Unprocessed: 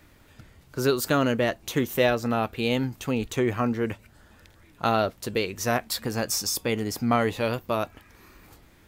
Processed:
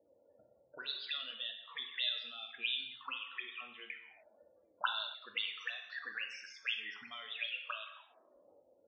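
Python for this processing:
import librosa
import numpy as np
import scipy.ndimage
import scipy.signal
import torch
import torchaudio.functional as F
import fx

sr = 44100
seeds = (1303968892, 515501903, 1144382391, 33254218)

y = fx.auto_wah(x, sr, base_hz=510.0, top_hz=3500.0, q=14.0, full_db=-21.0, direction='up')
y = fx.spec_topn(y, sr, count=32)
y = fx.rev_gated(y, sr, seeds[0], gate_ms=310, shape='falling', drr_db=3.5)
y = y * 10.0 ** (6.0 / 20.0)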